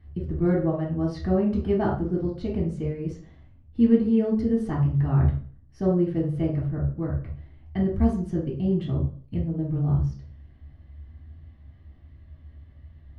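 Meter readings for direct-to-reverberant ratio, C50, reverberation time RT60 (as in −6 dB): −3.5 dB, 5.0 dB, 0.45 s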